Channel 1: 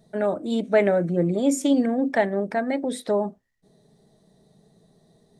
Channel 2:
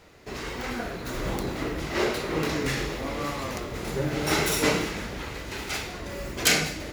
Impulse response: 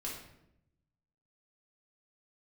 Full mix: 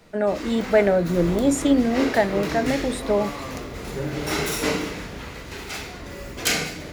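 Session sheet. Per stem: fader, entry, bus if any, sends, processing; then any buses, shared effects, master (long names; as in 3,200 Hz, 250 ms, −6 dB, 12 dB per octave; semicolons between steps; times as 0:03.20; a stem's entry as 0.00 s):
+1.5 dB, 0.00 s, no send, no processing
−4.0 dB, 0.00 s, send −4 dB, no processing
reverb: on, RT60 0.80 s, pre-delay 4 ms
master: no processing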